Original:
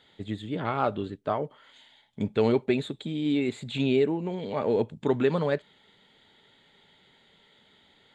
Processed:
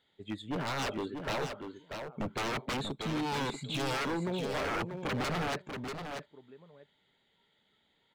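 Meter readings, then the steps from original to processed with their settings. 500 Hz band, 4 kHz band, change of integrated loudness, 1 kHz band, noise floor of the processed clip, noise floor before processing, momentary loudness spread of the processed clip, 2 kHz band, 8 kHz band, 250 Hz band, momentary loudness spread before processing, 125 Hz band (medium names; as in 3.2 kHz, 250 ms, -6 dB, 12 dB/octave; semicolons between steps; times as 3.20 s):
-10.5 dB, +1.5 dB, -7.0 dB, -2.0 dB, -74 dBFS, -62 dBFS, 10 LU, +2.0 dB, no reading, -8.5 dB, 9 LU, -5.5 dB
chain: spectral noise reduction 13 dB; echo from a far wall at 110 m, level -23 dB; wavefolder -28.5 dBFS; on a send: delay 638 ms -7 dB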